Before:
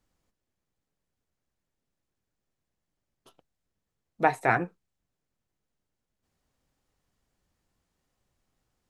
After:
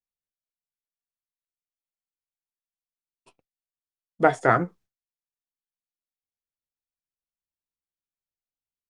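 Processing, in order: formant shift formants -3 st; expander -52 dBFS; gain +4.5 dB

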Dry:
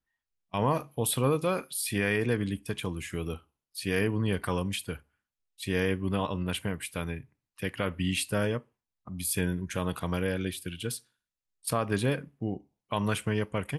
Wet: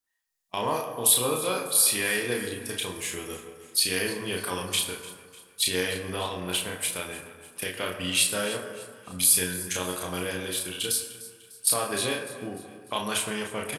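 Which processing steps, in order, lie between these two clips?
recorder AGC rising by 11 dB/s; doubler 33 ms -3 dB; in parallel at -11.5 dB: crossover distortion -40 dBFS; on the sum: tone controls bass -12 dB, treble +11 dB; thinning echo 0.299 s, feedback 50%, high-pass 480 Hz, level -16 dB; on a send at -5 dB: reverb RT60 1.6 s, pre-delay 8 ms; on the sum: dynamic EQ 3600 Hz, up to +5 dB, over -39 dBFS, Q 1.6; gain -3.5 dB

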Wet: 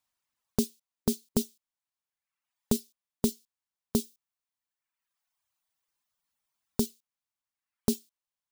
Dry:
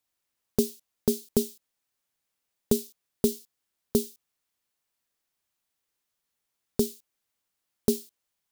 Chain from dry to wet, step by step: fifteen-band EQ 400 Hz -8 dB, 1000 Hz +5 dB, 16000 Hz -5 dB; reverb removal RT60 1.3 s; 4.04–6.81 high shelf 12000 Hz +4.5 dB

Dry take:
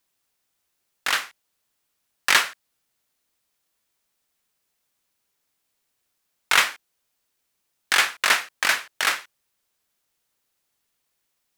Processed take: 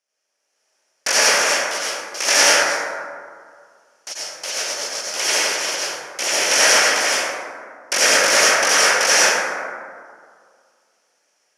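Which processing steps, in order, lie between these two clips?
G.711 law mismatch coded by A; transient shaper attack -1 dB, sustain +3 dB; AGC gain up to 10.5 dB; wrapped overs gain 15.5 dB; echoes that change speed 0.589 s, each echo +6 st, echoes 3; speaker cabinet 410–9200 Hz, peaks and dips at 560 Hz +8 dB, 1100 Hz -4 dB, 3800 Hz -9 dB, 5700 Hz +8 dB, 8000 Hz -8 dB; plate-style reverb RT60 2 s, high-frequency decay 0.35×, pre-delay 75 ms, DRR -7.5 dB; gain +5 dB

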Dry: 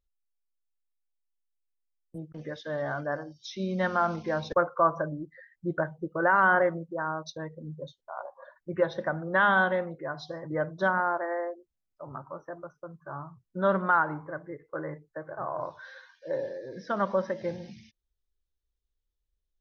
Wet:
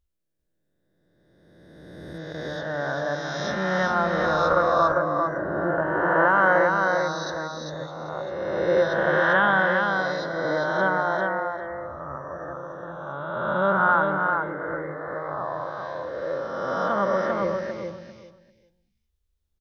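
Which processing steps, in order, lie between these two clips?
spectral swells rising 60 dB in 2.08 s; bell 72 Hz +14 dB 0.25 oct; on a send: feedback echo 0.396 s, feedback 18%, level -4 dB

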